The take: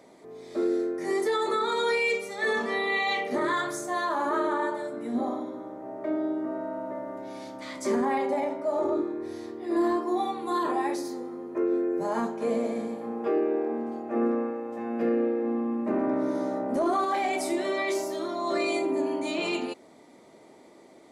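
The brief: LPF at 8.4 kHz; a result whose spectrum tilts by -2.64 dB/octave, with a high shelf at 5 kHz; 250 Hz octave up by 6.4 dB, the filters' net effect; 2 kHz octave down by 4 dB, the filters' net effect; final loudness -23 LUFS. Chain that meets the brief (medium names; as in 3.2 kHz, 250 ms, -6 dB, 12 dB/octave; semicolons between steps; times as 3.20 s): low-pass 8.4 kHz; peaking EQ 250 Hz +8.5 dB; peaking EQ 2 kHz -4 dB; treble shelf 5 kHz -5 dB; trim +2 dB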